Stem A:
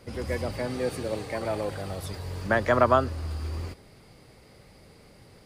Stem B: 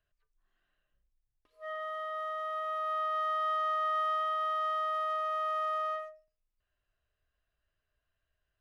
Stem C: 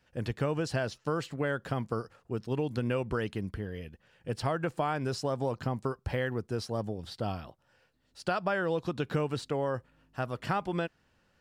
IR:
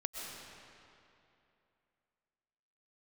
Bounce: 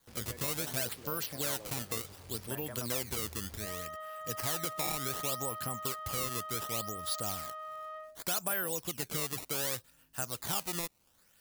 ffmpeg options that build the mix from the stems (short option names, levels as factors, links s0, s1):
-filter_complex "[0:a]acrusher=bits=5:mix=0:aa=0.000001,acompressor=threshold=0.0562:ratio=6,volume=0.126[s0];[1:a]alimiter=level_in=3.98:limit=0.0631:level=0:latency=1:release=200,volume=0.251,adelay=2000,volume=0.75[s1];[2:a]acompressor=threshold=0.0158:ratio=1.5,acrusher=samples=16:mix=1:aa=0.000001:lfo=1:lforange=25.6:lforate=0.67,crystalizer=i=8:c=0,volume=0.473[s2];[s0][s1][s2]amix=inputs=3:normalize=0,asoftclip=type=tanh:threshold=0.158"